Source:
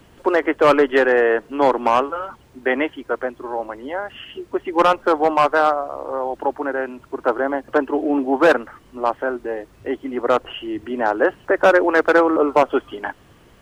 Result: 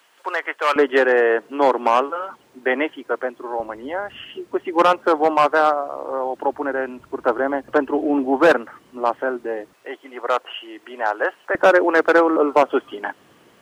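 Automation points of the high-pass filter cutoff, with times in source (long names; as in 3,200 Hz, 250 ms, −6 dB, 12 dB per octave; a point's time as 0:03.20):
980 Hz
from 0:00.76 250 Hz
from 0:03.60 64 Hz
from 0:04.27 160 Hz
from 0:06.53 62 Hz
from 0:08.51 160 Hz
from 0:09.73 650 Hz
from 0:11.55 200 Hz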